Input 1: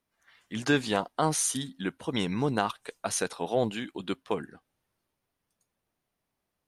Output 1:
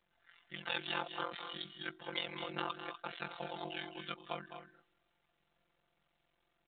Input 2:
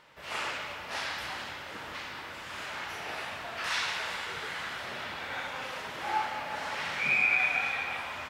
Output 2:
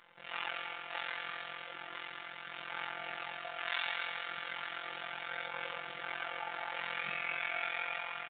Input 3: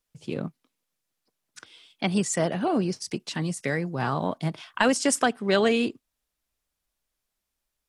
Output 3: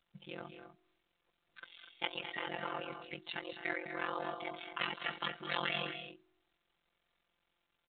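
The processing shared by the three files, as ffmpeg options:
-af "aecho=1:1:7.2:0.59,bandreject=f=322.8:t=h:w=4,bandreject=f=645.6:t=h:w=4,bandreject=f=968.4:t=h:w=4,bandreject=f=1.2912k:t=h:w=4,bandreject=f=1.614k:t=h:w=4,afftfilt=real='hypot(re,im)*cos(PI*b)':imag='0':win_size=1024:overlap=0.75,afftfilt=real='re*lt(hypot(re,im),0.158)':imag='im*lt(hypot(re,im),0.158)':win_size=1024:overlap=0.75,aphaser=in_gain=1:out_gain=1:delay=4.2:decay=0.26:speed=0.35:type=sinusoidal,highpass=f=96:p=1,aeval=exprs='val(0)*sin(2*PI*22*n/s)':c=same,lowshelf=f=420:g=-8.5,aecho=1:1:207|244.9:0.282|0.282,volume=1dB" -ar 8000 -c:a pcm_mulaw

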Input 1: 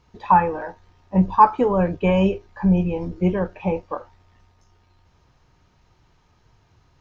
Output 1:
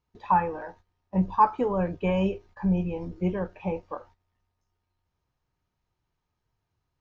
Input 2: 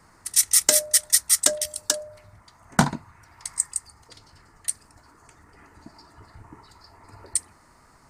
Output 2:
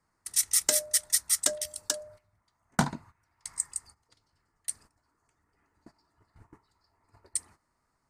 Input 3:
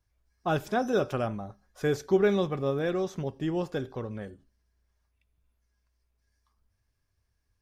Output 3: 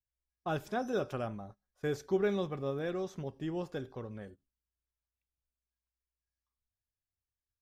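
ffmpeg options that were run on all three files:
-af "agate=range=-14dB:threshold=-44dB:ratio=16:detection=peak,volume=-7dB"

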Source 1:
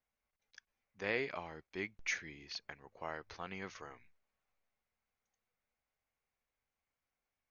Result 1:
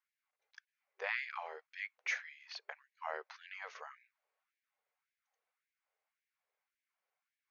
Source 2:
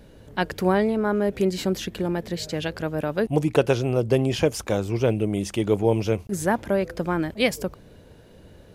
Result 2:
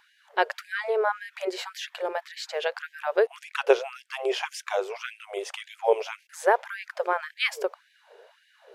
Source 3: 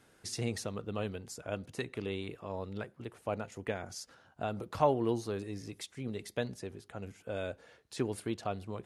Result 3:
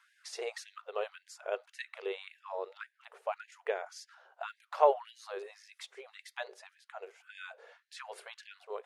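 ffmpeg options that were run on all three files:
-af "lowpass=f=2.1k:p=1,afftfilt=real='re*gte(b*sr/1024,350*pow(1600/350,0.5+0.5*sin(2*PI*1.8*pts/sr)))':imag='im*gte(b*sr/1024,350*pow(1600/350,0.5+0.5*sin(2*PI*1.8*pts/sr)))':win_size=1024:overlap=0.75,volume=4dB"

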